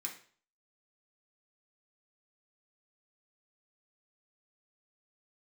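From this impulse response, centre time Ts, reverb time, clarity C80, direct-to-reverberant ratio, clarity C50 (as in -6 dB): 18 ms, 0.45 s, 13.5 dB, -1.5 dB, 8.5 dB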